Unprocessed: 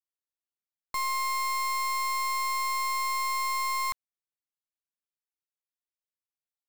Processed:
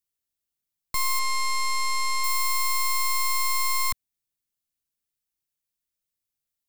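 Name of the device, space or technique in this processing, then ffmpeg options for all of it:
smiley-face EQ: -filter_complex "[0:a]asettb=1/sr,asplit=3[s0][s1][s2];[s0]atrim=end=1.194[s3];[s1]atrim=start=1.19:end=2.24,asetpts=PTS-STARTPTS,afade=t=in:d=0.004:c=qsin,afade=t=out:st=1.046:d=0.004:c=qsin,lowpass=8300[s4];[s2]atrim=start=2.236[s5];[s3][s4]acrossfade=d=0.004:c1=hsin:c2=qsin[s6];[s6][s5]acrossfade=d=0.004:c1=qsin:c2=hsin,lowshelf=f=170:g=6.5,equalizer=f=920:t=o:w=2.6:g=-7.5,highshelf=f=9600:g=5,volume=2.24"

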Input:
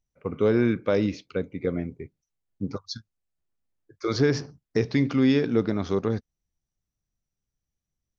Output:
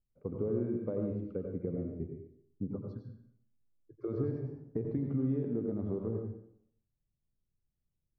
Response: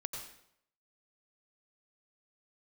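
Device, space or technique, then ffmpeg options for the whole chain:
television next door: -filter_complex "[0:a]acompressor=threshold=0.0282:ratio=3,lowpass=520[s0];[1:a]atrim=start_sample=2205[s1];[s0][s1]afir=irnorm=-1:irlink=0"

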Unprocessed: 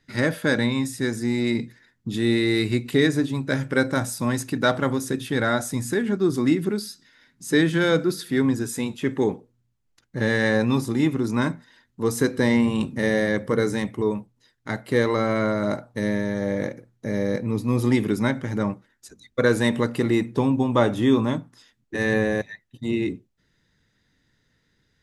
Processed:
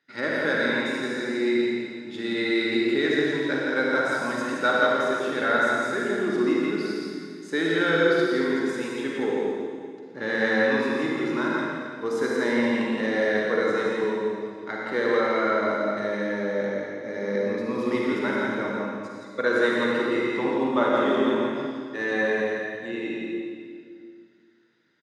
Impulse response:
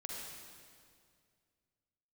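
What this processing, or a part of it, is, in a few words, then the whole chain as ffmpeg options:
station announcement: -filter_complex "[0:a]highpass=330,lowpass=4500,equalizer=f=1400:t=o:w=0.23:g=6,aecho=1:1:119.5|169.1:0.355|0.562[s0];[1:a]atrim=start_sample=2205[s1];[s0][s1]afir=irnorm=-1:irlink=0"

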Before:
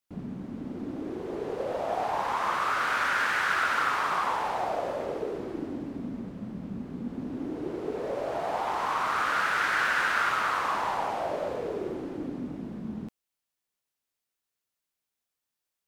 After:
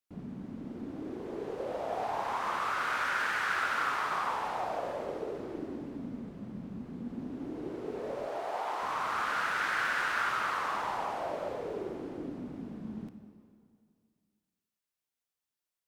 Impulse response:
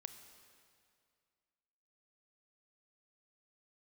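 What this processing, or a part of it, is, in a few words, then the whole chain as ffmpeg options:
stairwell: -filter_complex "[0:a]asettb=1/sr,asplit=3[s0][s1][s2];[s0]atrim=end=8.274[s3];[s1]atrim=start=8.27:end=8.82,asetpts=PTS-STARTPTS,afade=t=in:d=0.004:c=qsin,afade=t=out:st=0.546:d=0.004:c=qsin,highpass=350[s4];[s2]atrim=start=8.816[s5];[s3][s4]acrossfade=d=0.004:c1=hsin:c2=qsin[s6];[s6][s5]acrossfade=d=0.004:c1=qsin:c2=hsin[s7];[1:a]atrim=start_sample=2205[s8];[s7][s8]afir=irnorm=-1:irlink=0"

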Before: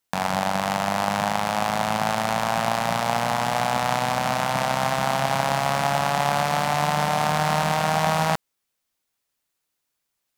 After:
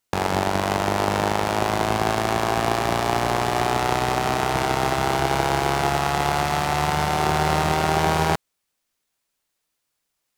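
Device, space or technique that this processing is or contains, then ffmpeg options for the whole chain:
octave pedal: -filter_complex "[0:a]asplit=2[s0][s1];[s1]asetrate=22050,aresample=44100,atempo=2,volume=0.631[s2];[s0][s2]amix=inputs=2:normalize=0,asettb=1/sr,asplit=3[s3][s4][s5];[s3]atrim=end=5.894[s6];[s4]atrim=start=5.89:end=7.19,asetpts=PTS-STARTPTS,afade=t=in:d=0.004:c=qsin,afade=t=out:st=1.296:d=0.004:c=qsin,equalizer=f=380:t=o:w=0.88:g=-5.5[s7];[s5]atrim=start=7.186[s8];[s6][s7]acrossfade=d=0.004:c1=hsin:c2=qsin[s9];[s9][s8]acrossfade=d=0.004:c1=qsin:c2=hsin"

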